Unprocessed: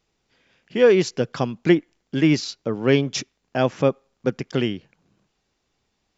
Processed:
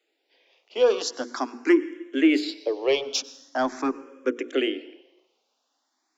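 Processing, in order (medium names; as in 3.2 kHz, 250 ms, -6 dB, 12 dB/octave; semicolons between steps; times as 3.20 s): steep high-pass 260 Hz 72 dB/octave; hum notches 60/120/180/240/300/360/420/480 Hz; in parallel at -3.5 dB: saturation -17.5 dBFS, distortion -10 dB; on the sum: plate-style reverb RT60 1.1 s, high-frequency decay 0.9×, pre-delay 85 ms, DRR 17 dB; barber-pole phaser +0.43 Hz; trim -2 dB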